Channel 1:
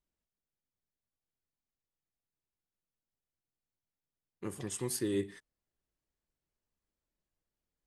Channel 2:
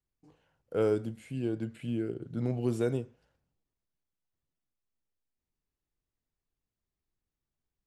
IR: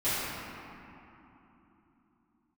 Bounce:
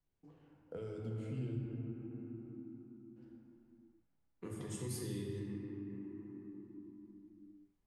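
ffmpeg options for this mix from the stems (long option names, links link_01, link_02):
-filter_complex "[0:a]volume=-5dB,asplit=2[link_01][link_02];[link_02]volume=-5dB[link_03];[1:a]lowpass=9400,alimiter=level_in=2dB:limit=-24dB:level=0:latency=1,volume=-2dB,acontrast=71,volume=-11dB,asplit=3[link_04][link_05][link_06];[link_04]atrim=end=1.59,asetpts=PTS-STARTPTS,afade=type=out:start_time=1.586:duration=0.004:curve=hsin[link_07];[link_05]atrim=start=1.59:end=3.16,asetpts=PTS-STARTPTS,volume=0[link_08];[link_06]atrim=start=3.16,asetpts=PTS-STARTPTS,afade=type=in:duration=0.004:curve=hsin[link_09];[link_07][link_08][link_09]concat=n=3:v=0:a=1,asplit=2[link_10][link_11];[link_11]volume=-8dB[link_12];[2:a]atrim=start_sample=2205[link_13];[link_03][link_12]amix=inputs=2:normalize=0[link_14];[link_14][link_13]afir=irnorm=-1:irlink=0[link_15];[link_01][link_10][link_15]amix=inputs=3:normalize=0,highshelf=frequency=3100:gain=-10,acrossover=split=160|3000[link_16][link_17][link_18];[link_17]acompressor=threshold=-45dB:ratio=6[link_19];[link_16][link_19][link_18]amix=inputs=3:normalize=0"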